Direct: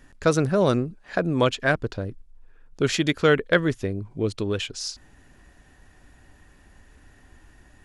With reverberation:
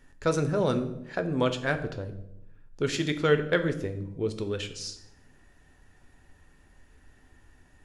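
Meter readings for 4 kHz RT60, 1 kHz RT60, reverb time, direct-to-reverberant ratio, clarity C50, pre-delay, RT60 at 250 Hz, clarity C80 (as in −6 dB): 0.55 s, 0.70 s, 0.85 s, 7.0 dB, 12.5 dB, 5 ms, 1.1 s, 14.5 dB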